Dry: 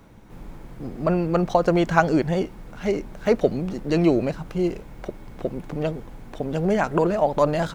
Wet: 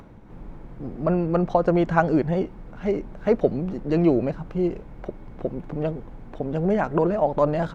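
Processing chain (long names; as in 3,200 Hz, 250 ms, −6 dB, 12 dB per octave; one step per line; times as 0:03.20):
low-pass filter 1,300 Hz 6 dB per octave
upward compression, threshold −41 dBFS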